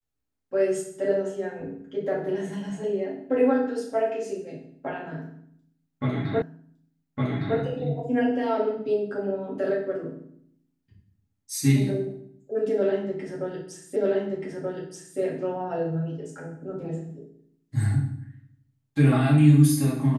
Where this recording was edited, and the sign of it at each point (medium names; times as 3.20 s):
6.42 s: repeat of the last 1.16 s
13.96 s: repeat of the last 1.23 s